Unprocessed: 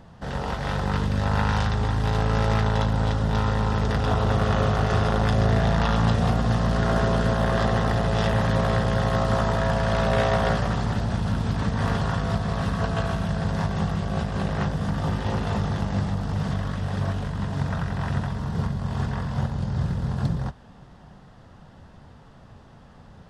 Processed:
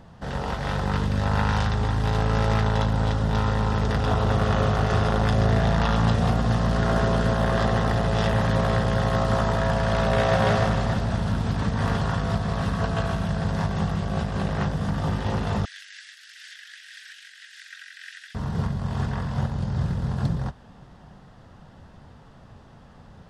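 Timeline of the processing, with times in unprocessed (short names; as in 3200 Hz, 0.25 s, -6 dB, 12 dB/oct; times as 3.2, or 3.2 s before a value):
9.99–10.4 echo throw 0.29 s, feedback 45%, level -3 dB
15.65–18.35 steep high-pass 1600 Hz 72 dB/oct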